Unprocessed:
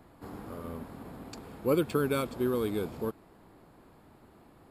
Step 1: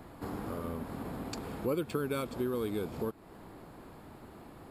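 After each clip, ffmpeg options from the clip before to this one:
ffmpeg -i in.wav -af "acompressor=threshold=-42dB:ratio=2.5,volume=6.5dB" out.wav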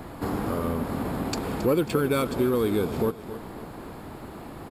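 ffmpeg -i in.wav -filter_complex "[0:a]aecho=1:1:271|542|813|1084:0.2|0.0838|0.0352|0.0148,asplit=2[link_01][link_02];[link_02]volume=32.5dB,asoftclip=hard,volume=-32.5dB,volume=-7.5dB[link_03];[link_01][link_03]amix=inputs=2:normalize=0,volume=7.5dB" out.wav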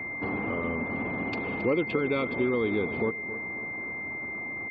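ffmpeg -i in.wav -af "aeval=exprs='val(0)+0.0316*sin(2*PI*2100*n/s)':channel_layout=same,afftfilt=real='re*gte(hypot(re,im),0.00708)':imag='im*gte(hypot(re,im),0.00708)':win_size=1024:overlap=0.75,highpass=100,equalizer=frequency=150:width_type=q:width=4:gain=-5,equalizer=frequency=1500:width_type=q:width=4:gain=-6,equalizer=frequency=2800:width_type=q:width=4:gain=4,lowpass=frequency=3500:width=0.5412,lowpass=frequency=3500:width=1.3066,volume=-3dB" out.wav

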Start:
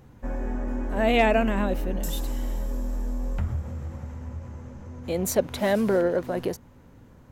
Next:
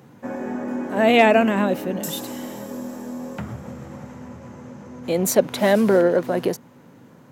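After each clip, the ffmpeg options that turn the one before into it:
ffmpeg -i in.wav -af "highpass=frequency=140:width=0.5412,highpass=frequency=140:width=1.3066,volume=6dB" out.wav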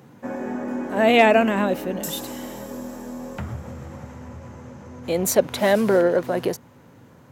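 ffmpeg -i in.wav -af "asubboost=boost=6:cutoff=75" out.wav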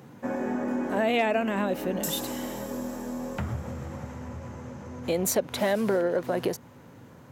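ffmpeg -i in.wav -af "acompressor=threshold=-24dB:ratio=3" out.wav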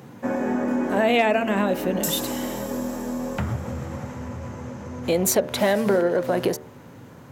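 ffmpeg -i in.wav -af "bandreject=frequency=75.01:width_type=h:width=4,bandreject=frequency=150.02:width_type=h:width=4,bandreject=frequency=225.03:width_type=h:width=4,bandreject=frequency=300.04:width_type=h:width=4,bandreject=frequency=375.05:width_type=h:width=4,bandreject=frequency=450.06:width_type=h:width=4,bandreject=frequency=525.07:width_type=h:width=4,bandreject=frequency=600.08:width_type=h:width=4,bandreject=frequency=675.09:width_type=h:width=4,bandreject=frequency=750.1:width_type=h:width=4,bandreject=frequency=825.11:width_type=h:width=4,bandreject=frequency=900.12:width_type=h:width=4,bandreject=frequency=975.13:width_type=h:width=4,bandreject=frequency=1050.14:width_type=h:width=4,bandreject=frequency=1125.15:width_type=h:width=4,bandreject=frequency=1200.16:width_type=h:width=4,bandreject=frequency=1275.17:width_type=h:width=4,bandreject=frequency=1350.18:width_type=h:width=4,bandreject=frequency=1425.19:width_type=h:width=4,bandreject=frequency=1500.2:width_type=h:width=4,bandreject=frequency=1575.21:width_type=h:width=4,bandreject=frequency=1650.22:width_type=h:width=4,bandreject=frequency=1725.23:width_type=h:width=4,bandreject=frequency=1800.24:width_type=h:width=4,bandreject=frequency=1875.25:width_type=h:width=4,bandreject=frequency=1950.26:width_type=h:width=4,bandreject=frequency=2025.27:width_type=h:width=4,volume=5.5dB" out.wav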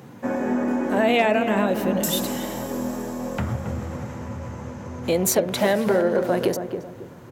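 ffmpeg -i in.wav -filter_complex "[0:a]asplit=2[link_01][link_02];[link_02]adelay=273,lowpass=frequency=940:poles=1,volume=-6.5dB,asplit=2[link_03][link_04];[link_04]adelay=273,lowpass=frequency=940:poles=1,volume=0.34,asplit=2[link_05][link_06];[link_06]adelay=273,lowpass=frequency=940:poles=1,volume=0.34,asplit=2[link_07][link_08];[link_08]adelay=273,lowpass=frequency=940:poles=1,volume=0.34[link_09];[link_01][link_03][link_05][link_07][link_09]amix=inputs=5:normalize=0" out.wav

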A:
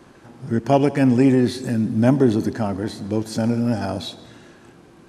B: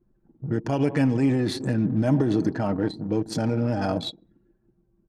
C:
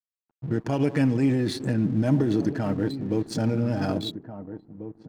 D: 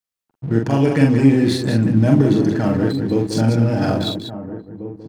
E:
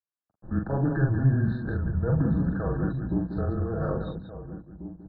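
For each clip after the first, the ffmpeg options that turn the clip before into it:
ffmpeg -i in.wav -af "anlmdn=25.1,alimiter=limit=-13.5dB:level=0:latency=1:release=68,aecho=1:1:6.4:0.43" out.wav
ffmpeg -i in.wav -filter_complex "[0:a]aeval=exprs='sgn(val(0))*max(abs(val(0))-0.00376,0)':channel_layout=same,asplit=2[link_01][link_02];[link_02]adelay=1691,volume=-12dB,highshelf=frequency=4000:gain=-38[link_03];[link_01][link_03]amix=inputs=2:normalize=0,adynamicequalizer=threshold=0.00891:dfrequency=830:dqfactor=1.3:tfrequency=830:tqfactor=1.3:attack=5:release=100:ratio=0.375:range=2.5:mode=cutabove:tftype=bell" out.wav
ffmpeg -i in.wav -af "aecho=1:1:43.73|189.5:0.708|0.447,volume=6dB" out.wav
ffmpeg -i in.wav -af "highpass=frequency=210:width_type=q:width=0.5412,highpass=frequency=210:width_type=q:width=1.307,lowpass=frequency=2700:width_type=q:width=0.5176,lowpass=frequency=2700:width_type=q:width=0.7071,lowpass=frequency=2700:width_type=q:width=1.932,afreqshift=-140,afftfilt=real='re*eq(mod(floor(b*sr/1024/1800),2),0)':imag='im*eq(mod(floor(b*sr/1024/1800),2),0)':win_size=1024:overlap=0.75,volume=-7.5dB" out.wav

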